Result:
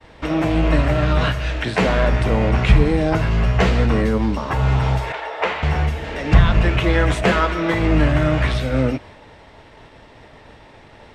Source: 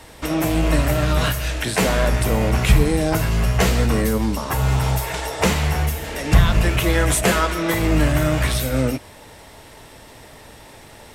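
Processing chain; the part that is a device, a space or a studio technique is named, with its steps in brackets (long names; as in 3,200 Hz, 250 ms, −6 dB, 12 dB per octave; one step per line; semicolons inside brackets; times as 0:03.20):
hearing-loss simulation (low-pass filter 3,300 Hz 12 dB per octave; downward expander −40 dBFS)
0:05.12–0:05.63: three-way crossover with the lows and the highs turned down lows −24 dB, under 420 Hz, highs −13 dB, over 3,600 Hz
level +1.5 dB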